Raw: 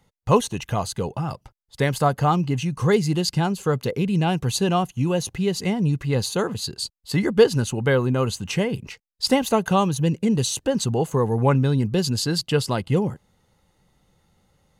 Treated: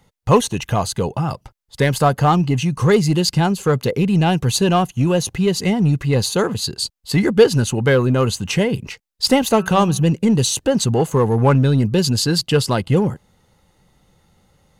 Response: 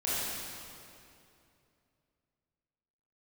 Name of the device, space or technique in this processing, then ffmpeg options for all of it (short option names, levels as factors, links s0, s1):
parallel distortion: -filter_complex "[0:a]asplit=2[s0][s1];[s1]asoftclip=type=hard:threshold=0.119,volume=0.562[s2];[s0][s2]amix=inputs=2:normalize=0,asplit=3[s3][s4][s5];[s3]afade=t=out:st=9.57:d=0.02[s6];[s4]bandreject=f=187.5:t=h:w=4,bandreject=f=375:t=h:w=4,bandreject=f=562.5:t=h:w=4,bandreject=f=750:t=h:w=4,bandreject=f=937.5:t=h:w=4,bandreject=f=1125:t=h:w=4,bandreject=f=1312.5:t=h:w=4,bandreject=f=1500:t=h:w=4,bandreject=f=1687.5:t=h:w=4,bandreject=f=1875:t=h:w=4,bandreject=f=2062.5:t=h:w=4,bandreject=f=2250:t=h:w=4,bandreject=f=2437.5:t=h:w=4,bandreject=f=2625:t=h:w=4,bandreject=f=2812.5:t=h:w=4,afade=t=in:st=9.57:d=0.02,afade=t=out:st=10.04:d=0.02[s7];[s5]afade=t=in:st=10.04:d=0.02[s8];[s6][s7][s8]amix=inputs=3:normalize=0,volume=1.26"